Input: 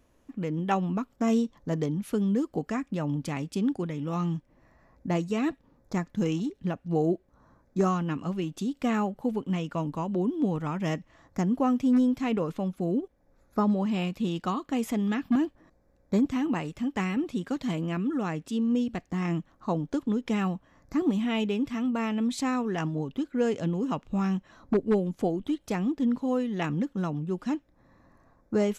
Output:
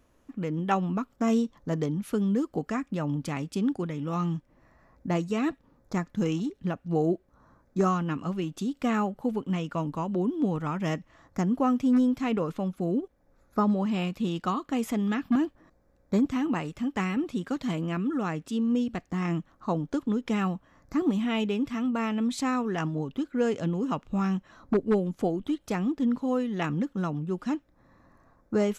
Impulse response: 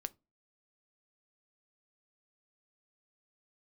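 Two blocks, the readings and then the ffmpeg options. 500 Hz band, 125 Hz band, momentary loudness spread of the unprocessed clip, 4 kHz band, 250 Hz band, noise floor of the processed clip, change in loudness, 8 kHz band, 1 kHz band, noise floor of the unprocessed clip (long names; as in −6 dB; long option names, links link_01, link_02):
0.0 dB, 0.0 dB, 6 LU, 0.0 dB, 0.0 dB, −65 dBFS, 0.0 dB, can't be measured, +1.0 dB, −65 dBFS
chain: -af "equalizer=frequency=1300:width=2.9:gain=3.5"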